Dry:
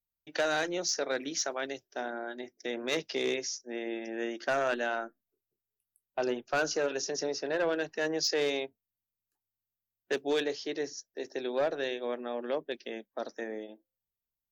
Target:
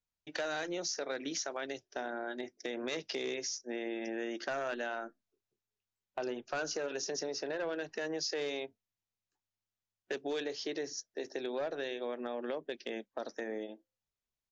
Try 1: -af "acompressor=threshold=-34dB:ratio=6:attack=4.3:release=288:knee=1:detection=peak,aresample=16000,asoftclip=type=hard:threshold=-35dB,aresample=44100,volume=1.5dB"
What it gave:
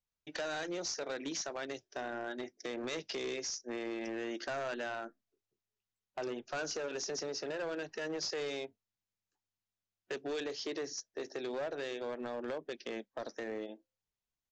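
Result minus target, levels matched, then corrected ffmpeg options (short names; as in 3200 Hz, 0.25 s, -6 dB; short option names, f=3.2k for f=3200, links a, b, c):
hard clip: distortion +18 dB
-af "acompressor=threshold=-34dB:ratio=6:attack=4.3:release=288:knee=1:detection=peak,aresample=16000,asoftclip=type=hard:threshold=-29dB,aresample=44100,volume=1.5dB"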